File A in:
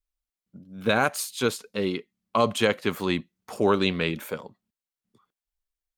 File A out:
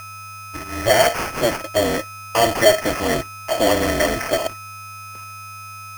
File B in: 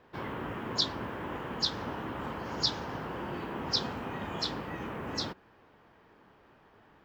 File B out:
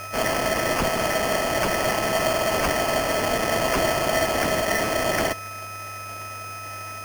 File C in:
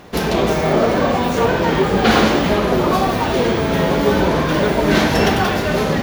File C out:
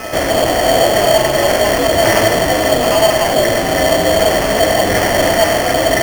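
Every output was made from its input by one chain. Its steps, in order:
high-pass 99 Hz 12 dB/octave; ring modulator 110 Hz; whistle 1.3 kHz -42 dBFS; in parallel at -4 dB: fuzz box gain 39 dB, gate -46 dBFS; on the sum: small resonant body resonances 650/1800 Hz, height 17 dB, ringing for 45 ms; sample-rate reducer 3.8 kHz, jitter 0%; trim -5 dB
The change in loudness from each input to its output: +7.0 LU, +12.0 LU, +3.5 LU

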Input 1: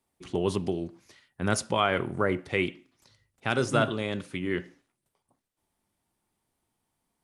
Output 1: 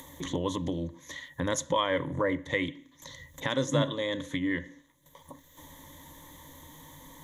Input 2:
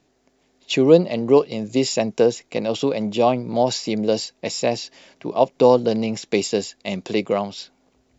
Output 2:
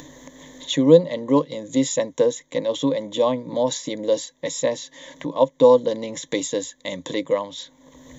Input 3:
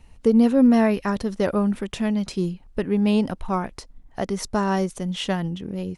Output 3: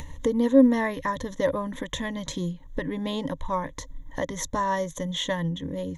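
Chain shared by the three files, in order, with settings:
rippled EQ curve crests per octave 1.1, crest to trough 17 dB; upward compressor, threshold -20 dBFS; trim -5 dB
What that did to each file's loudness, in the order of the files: -2.0 LU, -1.0 LU, -4.0 LU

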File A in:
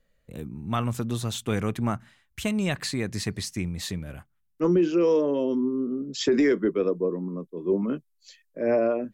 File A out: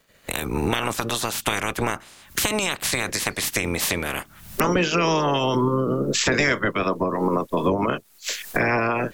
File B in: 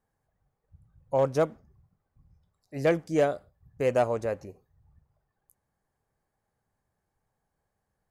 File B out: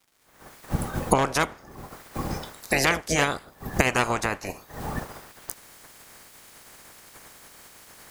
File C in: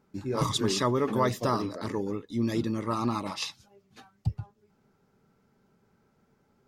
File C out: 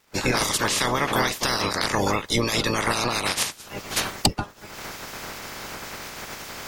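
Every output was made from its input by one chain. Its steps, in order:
spectral peaks clipped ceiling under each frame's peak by 27 dB; recorder AGC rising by 55 dB/s; crackle 270 per s -51 dBFS; peak normalisation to -1.5 dBFS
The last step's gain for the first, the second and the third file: +0.5 dB, +0.5 dB, +1.0 dB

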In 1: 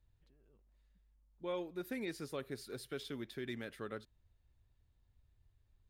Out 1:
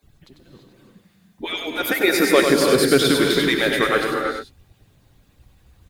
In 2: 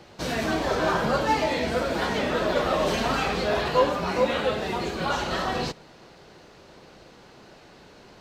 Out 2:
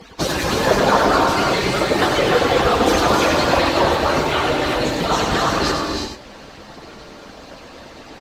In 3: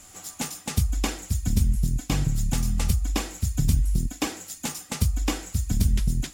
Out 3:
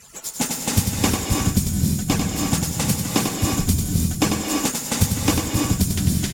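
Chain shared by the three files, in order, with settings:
harmonic-percussive separation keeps percussive; dynamic bell 2.4 kHz, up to -3 dB, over -44 dBFS, Q 0.87; on a send: delay 96 ms -6 dB; on the sum: gated-style reverb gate 370 ms rising, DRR 2 dB; Chebyshev shaper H 5 -28 dB, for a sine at -9.5 dBFS; peak normalisation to -3 dBFS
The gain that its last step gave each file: +25.0 dB, +11.5 dB, +6.5 dB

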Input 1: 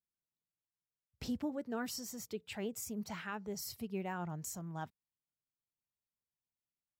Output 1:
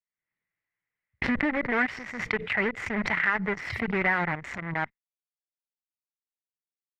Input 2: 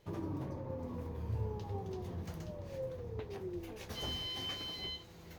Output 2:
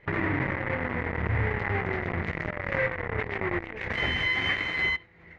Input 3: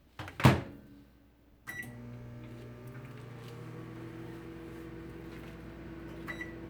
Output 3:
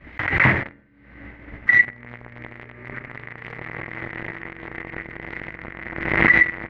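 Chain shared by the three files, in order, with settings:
expander -49 dBFS; in parallel at -11 dB: fuzz box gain 47 dB, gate -40 dBFS; on the sum: resonant low-pass 2 kHz, resonance Q 8.3; swell ahead of each attack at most 57 dB/s; trim -1.5 dB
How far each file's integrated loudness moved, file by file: +14.0 LU, +13.0 LU, +18.5 LU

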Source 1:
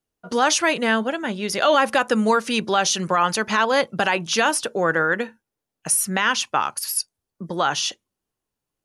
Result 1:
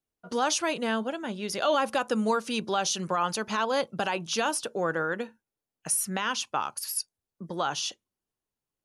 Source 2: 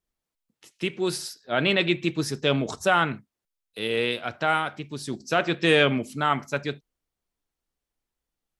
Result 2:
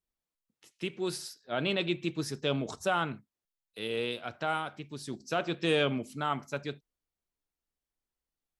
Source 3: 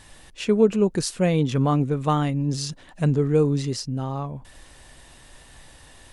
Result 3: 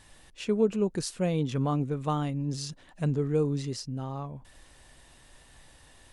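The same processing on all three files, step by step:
dynamic bell 1.9 kHz, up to -7 dB, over -38 dBFS, Q 2.3; trim -7 dB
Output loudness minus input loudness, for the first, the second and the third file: -8.0 LU, -8.0 LU, -7.0 LU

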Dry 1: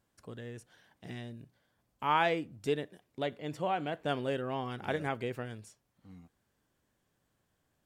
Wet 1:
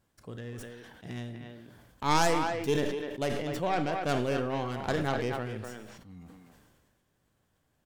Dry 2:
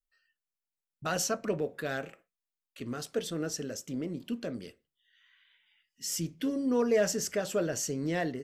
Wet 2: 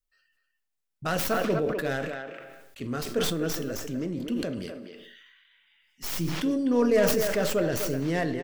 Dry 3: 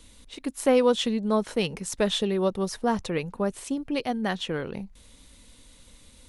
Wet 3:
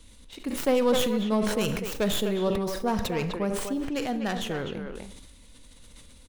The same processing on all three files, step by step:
tracing distortion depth 0.25 ms; bass shelf 150 Hz +4 dB; speakerphone echo 250 ms, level -7 dB; Schroeder reverb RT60 0.64 s, combs from 29 ms, DRR 13.5 dB; decay stretcher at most 33 dB/s; peak normalisation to -12 dBFS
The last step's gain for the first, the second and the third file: +1.0 dB, +2.5 dB, -3.5 dB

